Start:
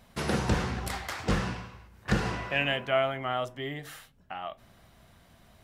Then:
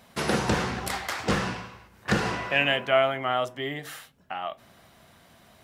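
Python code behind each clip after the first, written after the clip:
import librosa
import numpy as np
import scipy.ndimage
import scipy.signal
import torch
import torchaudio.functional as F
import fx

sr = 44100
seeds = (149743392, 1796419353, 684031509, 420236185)

y = fx.highpass(x, sr, hz=200.0, slope=6)
y = y * 10.0 ** (5.0 / 20.0)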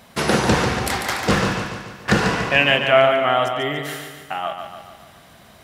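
y = fx.echo_feedback(x, sr, ms=144, feedback_pct=54, wet_db=-7.0)
y = y * 10.0 ** (7.0 / 20.0)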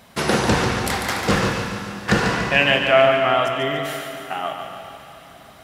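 y = fx.rev_plate(x, sr, seeds[0], rt60_s=4.2, hf_ratio=0.95, predelay_ms=0, drr_db=8.0)
y = y * 10.0 ** (-1.0 / 20.0)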